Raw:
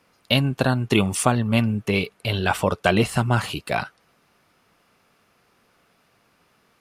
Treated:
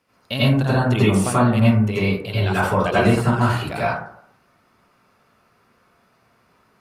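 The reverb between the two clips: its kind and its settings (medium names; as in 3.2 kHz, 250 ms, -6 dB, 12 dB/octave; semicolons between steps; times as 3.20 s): plate-style reverb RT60 0.66 s, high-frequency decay 0.3×, pre-delay 75 ms, DRR -9.5 dB; trim -7.5 dB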